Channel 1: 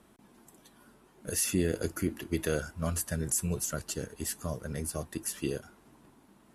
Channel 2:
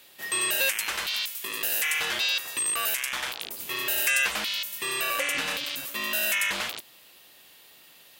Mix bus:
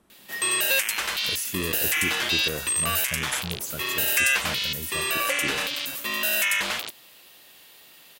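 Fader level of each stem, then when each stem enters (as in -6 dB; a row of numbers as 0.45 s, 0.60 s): -2.5 dB, +2.5 dB; 0.00 s, 0.10 s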